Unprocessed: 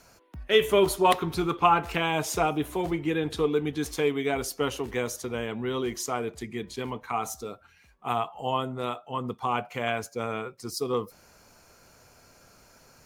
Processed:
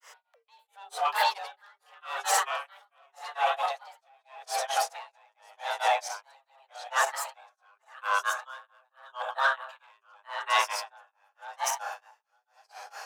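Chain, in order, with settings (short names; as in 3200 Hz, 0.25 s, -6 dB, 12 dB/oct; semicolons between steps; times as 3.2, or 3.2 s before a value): regenerating reverse delay 0.467 s, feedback 51%, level -2 dB; de-hum 72.89 Hz, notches 4; in parallel at 0 dB: negative-ratio compressor -28 dBFS, ratio -0.5; on the sum: delay with a stepping band-pass 0.124 s, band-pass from 240 Hz, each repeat 0.7 oct, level -4 dB; grains 0.243 s, grains 4.5/s, pitch spread up and down by 3 st; overdrive pedal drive 10 dB, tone 6000 Hz, clips at -15.5 dBFS; frequency shift +400 Hz; dB-linear tremolo 0.85 Hz, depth 38 dB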